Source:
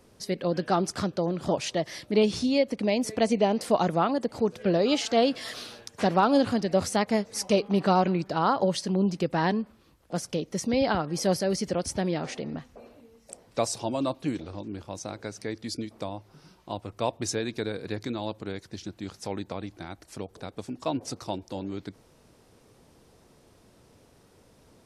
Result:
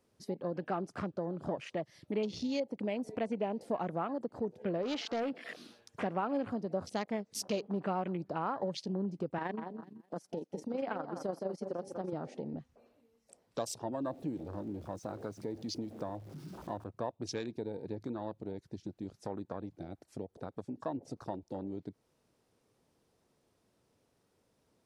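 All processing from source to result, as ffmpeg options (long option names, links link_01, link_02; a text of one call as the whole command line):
ffmpeg -i in.wav -filter_complex "[0:a]asettb=1/sr,asplit=3[link_01][link_02][link_03];[link_01]atrim=end=4.824[link_04];[link_02]atrim=start=4.82:end=5.49,asetpts=PTS-STARTPTS,afade=type=in:duration=0.004:curve=qsin,afade=type=out:start_time=0.666:duration=0.004:curve=qsin,equalizer=frequency=6900:width_type=o:width=0.93:gain=-5.5,asoftclip=type=hard:threshold=-22dB[link_05];[link_03]atrim=start=5.486[link_06];[link_04][link_05]acrossfade=duration=0.004:curve1=hsin:curve2=qsin[link_07];[link_07][link_06]acrossfade=duration=0.004:curve1=qsin:curve2=hsin,asettb=1/sr,asplit=3[link_08][link_09][link_10];[link_08]atrim=end=9.384[link_11];[link_09]atrim=start=9.38:end=12.13,asetpts=PTS-STARTPTS,afade=type=in:duration=0.004:curve=qsin,afade=type=out:start_time=2.746:duration=0.004:curve=qsin,highpass=220,asplit=2[link_12][link_13];[link_13]adelay=192,lowpass=frequency=3600:poles=1,volume=-9dB,asplit=2[link_14][link_15];[link_15]adelay=192,lowpass=frequency=3600:poles=1,volume=0.35,asplit=2[link_16][link_17];[link_17]adelay=192,lowpass=frequency=3600:poles=1,volume=0.35,asplit=2[link_18][link_19];[link_19]adelay=192,lowpass=frequency=3600:poles=1,volume=0.35[link_20];[link_12][link_14][link_16][link_18][link_20]amix=inputs=5:normalize=0,atrim=end_sample=121275,tremolo=f=24:d=0.519[link_21];[link_10]atrim=start=12.126[link_22];[link_11][link_21]acrossfade=duration=0.004:curve1=hsin:curve2=qsin[link_23];[link_23][link_22]acrossfade=duration=0.004:curve1=qsin:curve2=hsin,asettb=1/sr,asplit=3[link_24][link_25][link_26];[link_24]atrim=end=14.044[link_27];[link_25]atrim=start=14.04:end=16.84,asetpts=PTS-STARTPTS,afade=type=in:duration=0.004:curve=qsin,afade=type=out:start_time=2.796:duration=0.004:curve=qsin,aeval=exprs='val(0)+0.5*0.0112*sgn(val(0))':channel_layout=same,highpass=49[link_28];[link_26]atrim=start=16.836[link_29];[link_27][link_28]acrossfade=duration=0.004:curve1=hsin:curve2=qsin[link_30];[link_30][link_29]acrossfade=duration=0.004:curve1=qsin:curve2=hsin,afwtdn=0.0141,lowshelf=frequency=62:gain=-10,acompressor=threshold=-42dB:ratio=2,volume=1dB" out.wav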